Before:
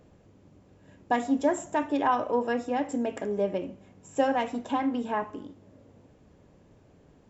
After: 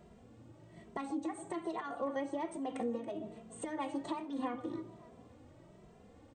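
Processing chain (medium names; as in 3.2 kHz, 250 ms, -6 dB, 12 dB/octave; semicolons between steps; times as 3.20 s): compression 6:1, threshold -36 dBFS, peak gain reduction 16 dB; tape speed +15%; on a send: echo whose repeats swap between lows and highs 140 ms, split 800 Hz, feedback 64%, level -12.5 dB; on the sum: dynamic bell 200 Hz, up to +7 dB, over -56 dBFS, Q 1.4; endless flanger 2.6 ms +1.2 Hz; trim +2 dB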